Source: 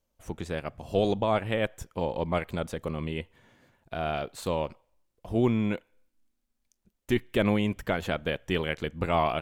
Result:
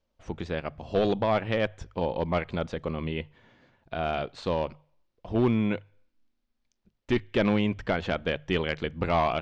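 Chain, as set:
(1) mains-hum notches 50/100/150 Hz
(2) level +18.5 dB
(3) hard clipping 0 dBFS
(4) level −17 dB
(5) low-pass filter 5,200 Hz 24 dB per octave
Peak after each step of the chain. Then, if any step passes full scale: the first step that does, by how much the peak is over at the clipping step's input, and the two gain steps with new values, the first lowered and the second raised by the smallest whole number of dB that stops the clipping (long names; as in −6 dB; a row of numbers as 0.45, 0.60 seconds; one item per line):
−13.0, +5.5, 0.0, −17.0, −16.0 dBFS
step 2, 5.5 dB
step 2 +12.5 dB, step 4 −11 dB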